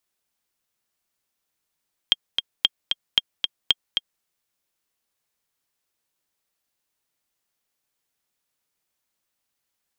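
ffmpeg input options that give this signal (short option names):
-f lavfi -i "aevalsrc='pow(10,(-3-5.5*gte(mod(t,2*60/227),60/227))/20)*sin(2*PI*3220*mod(t,60/227))*exp(-6.91*mod(t,60/227)/0.03)':d=2.11:s=44100"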